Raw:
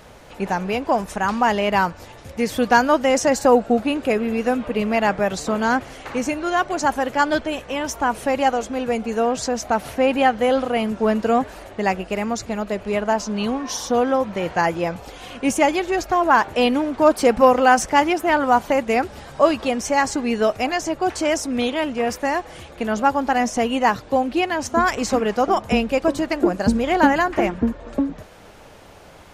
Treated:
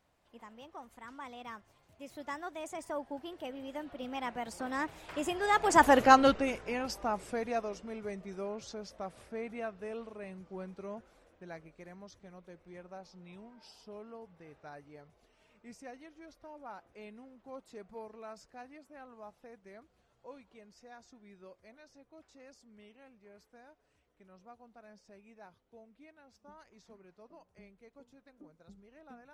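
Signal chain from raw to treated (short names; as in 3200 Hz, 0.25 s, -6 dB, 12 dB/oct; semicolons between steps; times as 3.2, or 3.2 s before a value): Doppler pass-by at 5.96, 55 m/s, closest 13 m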